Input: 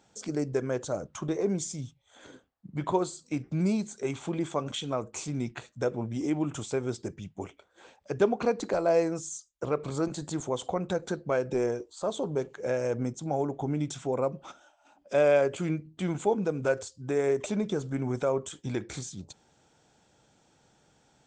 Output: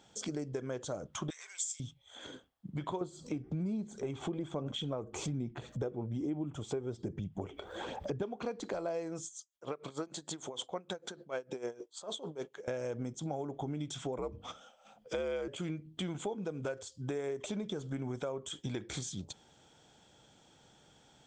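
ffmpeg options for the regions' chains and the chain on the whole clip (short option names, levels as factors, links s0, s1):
-filter_complex "[0:a]asettb=1/sr,asplit=3[s0][s1][s2];[s0]atrim=end=1.304[s3];[s1]atrim=start=1.3:end=1.8,asetpts=PTS-STARTPTS,afade=t=in:d=0.004:c=qsin,afade=t=out:st=0.496:d=0.004:c=qsin,highpass=f=1500:w=0.5412,highpass=f=1500:w=1.3066,equalizer=f=7700:w=4.4:g=14.5,acompressor=mode=upward:threshold=0.00501:ratio=2.5:attack=3.2:release=140:knee=2.83:detection=peak[s4];[s2]atrim=start=1.796[s5];[s3][s4]acrossfade=d=0.004:c1=hsin:c2=qsin[s6];[s6][s5]acrossfade=d=0.004:c1=qsin:c2=hsin,asettb=1/sr,asplit=3[s7][s8][s9];[s7]atrim=end=3.014[s10];[s8]atrim=start=3.01:end=8.23,asetpts=PTS-STARTPTS,afade=t=in:d=0.004:c=qsin,afade=t=out:st=5.216:d=0.004:c=qsin,tiltshelf=f=1300:g=7,acompressor=mode=upward:threshold=0.0316:ratio=2.5:attack=3.2:release=140:knee=2.83:detection=peak,aphaser=in_gain=1:out_gain=1:delay=2.7:decay=0.32:speed=1.2:type=sinusoidal[s11];[s9]atrim=start=8.226[s12];[s10][s11]acrossfade=d=0.004:c1=hsin:c2=qsin[s13];[s13][s12]acrossfade=d=0.004:c1=qsin:c2=hsin,asettb=1/sr,asplit=3[s14][s15][s16];[s14]atrim=end=9.254[s17];[s15]atrim=start=9.25:end=12.68,asetpts=PTS-STARTPTS,afade=t=in:d=0.004:c=qsin,afade=t=out:st=3.426:d=0.004:c=qsin,highpass=f=320:p=1,aeval=exprs='val(0)*pow(10,-19*(0.5-0.5*cos(2*PI*6.6*n/s))/20)':c=same[s18];[s16]atrim=start=12.676[s19];[s17][s18]acrossfade=d=0.004:c1=hsin:c2=qsin[s20];[s20][s19]acrossfade=d=0.004:c1=qsin:c2=hsin,asettb=1/sr,asplit=3[s21][s22][s23];[s21]atrim=end=14.184[s24];[s22]atrim=start=14.18:end=15.48,asetpts=PTS-STARTPTS,afade=t=in:d=0.004:c=qsin,afade=t=out:st=1.296:d=0.004:c=qsin,afreqshift=-73,bandreject=f=50:t=h:w=6,bandreject=f=100:t=h:w=6,bandreject=f=150:t=h:w=6,bandreject=f=200:t=h:w=6,bandreject=f=250:t=h:w=6,bandreject=f=300:t=h:w=6,bandreject=f=350:t=h:w=6,bandreject=f=400:t=h:w=6,bandreject=f=450:t=h:w=6[s25];[s23]atrim=start=15.476[s26];[s24][s25]acrossfade=d=0.004:c1=hsin:c2=qsin[s27];[s27][s26]acrossfade=d=0.004:c1=qsin:c2=hsin,equalizer=f=3300:w=7.9:g=10,acompressor=threshold=0.0158:ratio=6,volume=1.12"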